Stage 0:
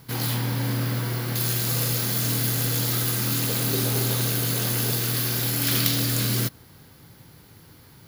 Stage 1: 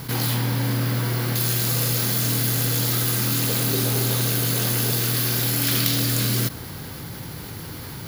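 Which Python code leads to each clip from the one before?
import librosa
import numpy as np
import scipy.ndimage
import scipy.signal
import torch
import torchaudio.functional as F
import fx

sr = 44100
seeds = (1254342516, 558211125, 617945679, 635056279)

y = fx.env_flatten(x, sr, amount_pct=50)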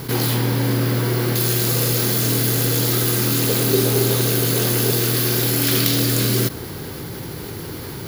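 y = fx.peak_eq(x, sr, hz=390.0, db=9.0, octaves=0.7)
y = y * librosa.db_to_amplitude(2.5)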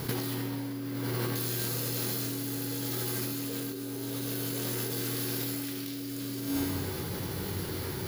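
y = fx.comb_fb(x, sr, f0_hz=93.0, decay_s=1.3, harmonics='all', damping=0.0, mix_pct=80)
y = fx.over_compress(y, sr, threshold_db=-35.0, ratio=-1.0)
y = y * librosa.db_to_amplitude(1.5)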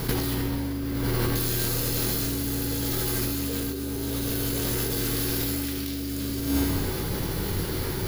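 y = fx.octave_divider(x, sr, octaves=2, level_db=-3.0)
y = y * librosa.db_to_amplitude(5.5)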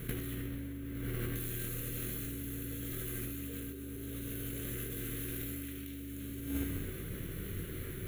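y = fx.fixed_phaser(x, sr, hz=2100.0, stages=4)
y = fx.cheby_harmonics(y, sr, harmonics=(3,), levels_db=(-17,), full_scale_db=-12.5)
y = y * librosa.db_to_amplitude(-7.0)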